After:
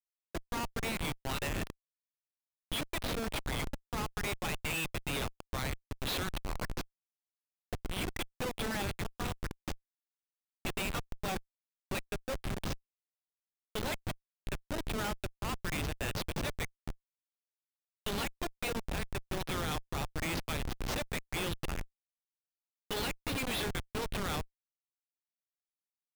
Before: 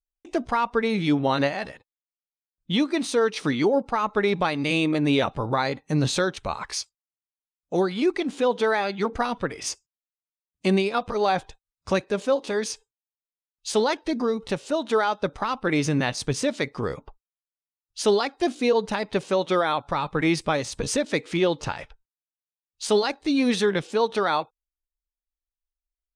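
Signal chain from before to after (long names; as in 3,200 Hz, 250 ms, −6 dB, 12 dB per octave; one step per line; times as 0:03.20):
envelope filter 300–3,000 Hz, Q 2.4, up, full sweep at −25 dBFS
comparator with hysteresis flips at −36 dBFS
level +6.5 dB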